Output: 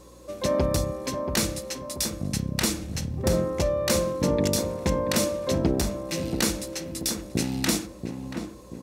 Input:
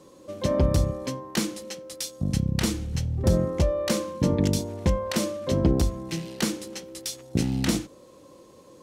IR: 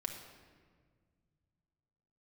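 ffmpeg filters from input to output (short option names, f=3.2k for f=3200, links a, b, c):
-filter_complex "[0:a]lowshelf=f=250:g=-9.5,bandreject=f=3.1k:w=13,asplit=2[a][b];[b]adelay=682,lowpass=f=1.2k:p=1,volume=-6.5dB,asplit=2[c][d];[d]adelay=682,lowpass=f=1.2k:p=1,volume=0.48,asplit=2[e][f];[f]adelay=682,lowpass=f=1.2k:p=1,volume=0.48,asplit=2[g][h];[h]adelay=682,lowpass=f=1.2k:p=1,volume=0.48,asplit=2[i][j];[j]adelay=682,lowpass=f=1.2k:p=1,volume=0.48,asplit=2[k][l];[l]adelay=682,lowpass=f=1.2k:p=1,volume=0.48[m];[a][c][e][g][i][k][m]amix=inputs=7:normalize=0,asplit=2[n][o];[1:a]atrim=start_sample=2205[p];[o][p]afir=irnorm=-1:irlink=0,volume=-17dB[q];[n][q]amix=inputs=2:normalize=0,aeval=exprs='val(0)+0.002*(sin(2*PI*60*n/s)+sin(2*PI*2*60*n/s)/2+sin(2*PI*3*60*n/s)/3+sin(2*PI*4*60*n/s)/4+sin(2*PI*5*60*n/s)/5)':c=same,highshelf=f=9.8k:g=6.5,volume=2dB"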